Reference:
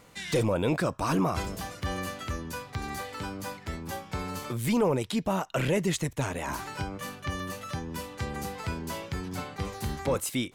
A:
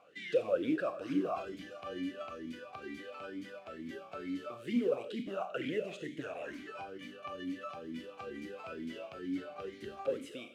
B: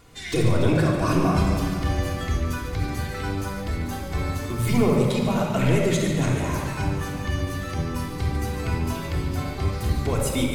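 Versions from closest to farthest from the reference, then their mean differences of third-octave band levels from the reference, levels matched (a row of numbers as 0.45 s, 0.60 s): B, A; 5.5 dB, 10.0 dB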